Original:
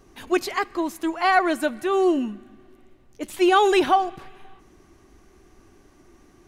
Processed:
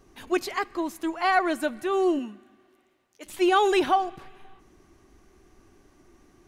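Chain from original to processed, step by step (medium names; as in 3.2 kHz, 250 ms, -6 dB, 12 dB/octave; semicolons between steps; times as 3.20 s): 2.18–3.25 s: high-pass 290 Hz -> 1.2 kHz 6 dB/octave; trim -3.5 dB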